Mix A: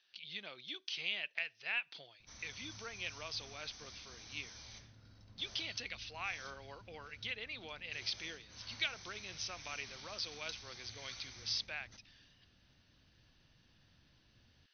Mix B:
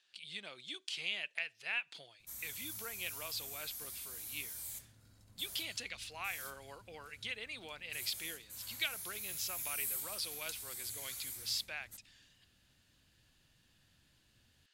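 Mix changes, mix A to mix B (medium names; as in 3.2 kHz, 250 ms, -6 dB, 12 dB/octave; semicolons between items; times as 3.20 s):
background -3.5 dB; master: remove brick-wall FIR low-pass 6.3 kHz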